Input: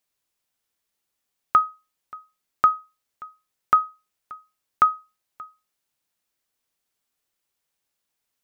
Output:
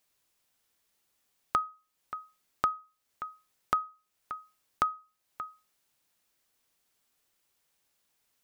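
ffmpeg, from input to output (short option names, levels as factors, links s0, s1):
-af "acompressor=threshold=0.00708:ratio=2,volume=1.68"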